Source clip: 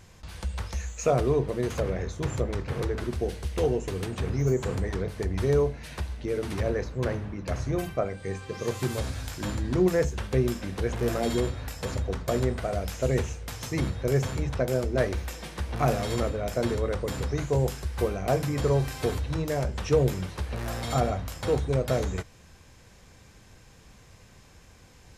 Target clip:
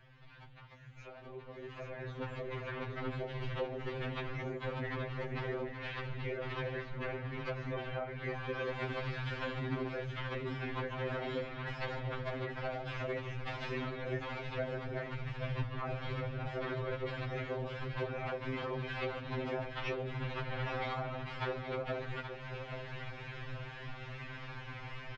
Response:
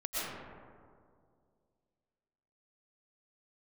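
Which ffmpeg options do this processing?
-filter_complex "[0:a]acrossover=split=150[s0][s1];[s0]asoftclip=type=tanh:threshold=0.0141[s2];[s1]lowpass=f=3100:w=0.5412,lowpass=f=3100:w=1.3066[s3];[s2][s3]amix=inputs=2:normalize=0,equalizer=f=230:t=o:w=2.8:g=-11,alimiter=level_in=1.5:limit=0.0631:level=0:latency=1:release=480,volume=0.668,asplit=3[s4][s5][s6];[s4]afade=t=out:st=15.13:d=0.02[s7];[s5]asubboost=boost=3.5:cutoff=130,afade=t=in:st=15.13:d=0.02,afade=t=out:st=16.48:d=0.02[s8];[s6]afade=t=in:st=16.48:d=0.02[s9];[s7][s8][s9]amix=inputs=3:normalize=0,afftfilt=real='hypot(re,im)*cos(2*PI*random(0))':imag='hypot(re,im)*sin(2*PI*random(1))':win_size=512:overlap=0.75,acompressor=threshold=0.00126:ratio=4,asplit=2[s10][s11];[s11]aecho=0:1:825|1650|2475|3300:0.376|0.132|0.046|0.0161[s12];[s10][s12]amix=inputs=2:normalize=0,dynaudnorm=f=820:g=5:m=6.31,afftfilt=real='re*2.45*eq(mod(b,6),0)':imag='im*2.45*eq(mod(b,6),0)':win_size=2048:overlap=0.75,volume=2"

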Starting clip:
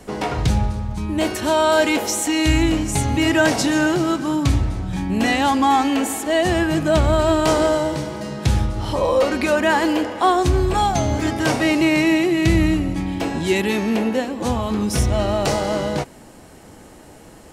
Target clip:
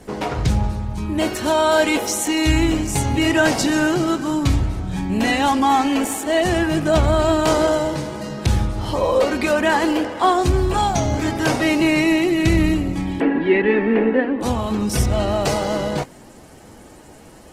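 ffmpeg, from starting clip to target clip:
-filter_complex "[0:a]asettb=1/sr,asplit=3[s0][s1][s2];[s0]atrim=end=13.204[s3];[s1]atrim=start=13.2:end=14.41,asetpts=PTS-STARTPTS,afade=t=in:d=0.004:c=qsin,afade=t=out:st=1.206:d=0.004:c=qsin,highpass=f=190:w=0.5412,highpass=f=190:w=1.3066,equalizer=f=280:t=q:w=4:g=8,equalizer=f=450:t=q:w=4:g=8,equalizer=f=640:t=q:w=4:g=-3,equalizer=f=1800:t=q:w=4:g=8,lowpass=f=2600:w=0.5412,lowpass=f=2600:w=1.3066[s4];[s2]atrim=start=14.406[s5];[s3][s4]acrossfade=d=0.004:c1=hsin:c2=qsin[s6];[s6][s5]acrossfade=d=0.004:c1=qsin:c2=hsin" -ar 48000 -c:a libopus -b:a 16k

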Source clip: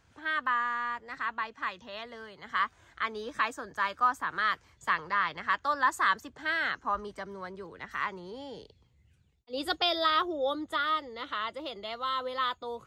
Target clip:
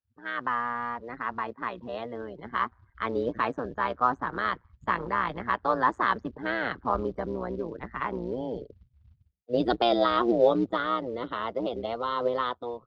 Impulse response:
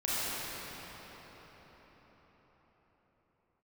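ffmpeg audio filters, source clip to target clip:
-filter_complex "[0:a]tremolo=f=120:d=0.857,afftdn=nr=30:nf=-53,acrossover=split=760[s0][s1];[s0]dynaudnorm=f=170:g=5:m=5.62[s2];[s2][s1]amix=inputs=2:normalize=0,acrusher=bits=7:mode=log:mix=0:aa=0.000001,lowpass=f=4600:w=0.5412,lowpass=f=4600:w=1.3066"

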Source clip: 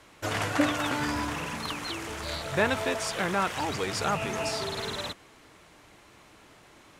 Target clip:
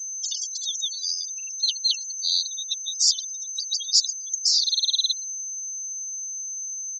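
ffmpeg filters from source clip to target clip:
-filter_complex "[0:a]aeval=exprs='val(0)+0.00398*sin(2*PI*6200*n/s)':c=same,acrossover=split=440 4800:gain=0.2 1 0.224[s0][s1][s2];[s0][s1][s2]amix=inputs=3:normalize=0,acrossover=split=4600[s3][s4];[s3]acompressor=threshold=0.00794:ratio=8[s5];[s5][s4]amix=inputs=2:normalize=0,aexciter=amount=5.3:drive=9.5:freq=3100,asplit=7[s6][s7][s8][s9][s10][s11][s12];[s7]adelay=122,afreqshift=77,volume=0.188[s13];[s8]adelay=244,afreqshift=154,volume=0.114[s14];[s9]adelay=366,afreqshift=231,volume=0.0676[s15];[s10]adelay=488,afreqshift=308,volume=0.0407[s16];[s11]adelay=610,afreqshift=385,volume=0.0245[s17];[s12]adelay=732,afreqshift=462,volume=0.0146[s18];[s6][s13][s14][s15][s16][s17][s18]amix=inputs=7:normalize=0,afftfilt=real='re*gte(hypot(re,im),0.0891)':imag='im*gte(hypot(re,im),0.0891)':win_size=1024:overlap=0.75,aresample=16000,aresample=44100,volume=1.68"

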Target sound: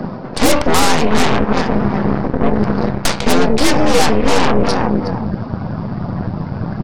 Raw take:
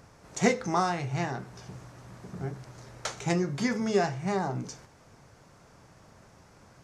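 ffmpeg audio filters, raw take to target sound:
-af "aecho=1:1:365|730|1095:0.2|0.0459|0.0106,afreqshift=81,asubboost=boost=8.5:cutoff=100,aresample=11025,volume=11.9,asoftclip=hard,volume=0.0841,aresample=44100,afftdn=nr=13:nf=-55,aeval=exprs='0.112*(cos(1*acos(clip(val(0)/0.112,-1,1)))-cos(1*PI/2))+0.00794*(cos(5*acos(clip(val(0)/0.112,-1,1)))-cos(5*PI/2))+0.0562*(cos(8*acos(clip(val(0)/0.112,-1,1)))-cos(8*PI/2))':c=same,equalizer=f=2000:t=o:w=2.2:g=-6,areverse,acompressor=threshold=0.0141:ratio=6,areverse,alimiter=level_in=37.6:limit=0.891:release=50:level=0:latency=1,volume=0.891"

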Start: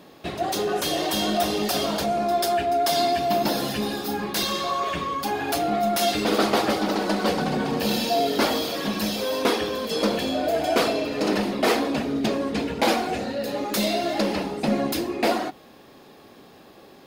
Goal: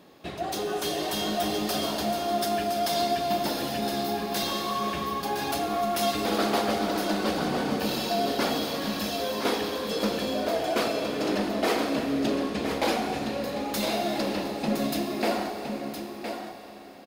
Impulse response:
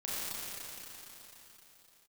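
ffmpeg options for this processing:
-filter_complex "[0:a]aecho=1:1:1014:0.422,asplit=2[s0][s1];[1:a]atrim=start_sample=2205[s2];[s1][s2]afir=irnorm=-1:irlink=0,volume=0.355[s3];[s0][s3]amix=inputs=2:normalize=0,volume=0.447"

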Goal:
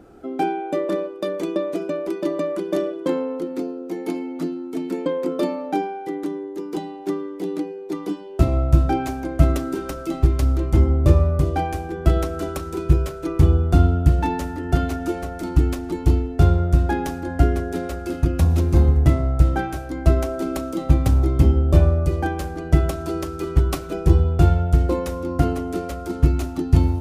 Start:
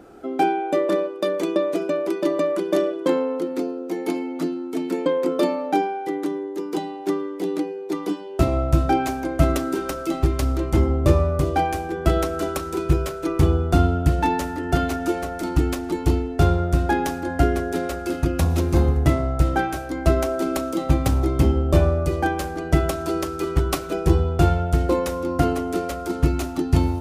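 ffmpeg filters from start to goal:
-af "lowshelf=f=210:g=9,volume=0.631"

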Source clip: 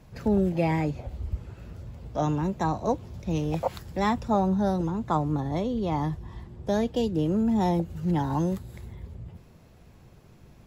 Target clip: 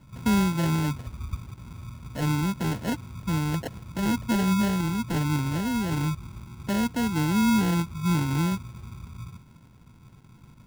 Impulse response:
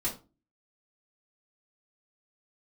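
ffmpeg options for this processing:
-af "equalizer=f=125:t=o:w=1:g=7,equalizer=f=250:t=o:w=1:g=7,equalizer=f=500:t=o:w=1:g=-7,equalizer=f=4000:t=o:w=1:g=-11,acrusher=samples=37:mix=1:aa=0.000001,volume=0.631"

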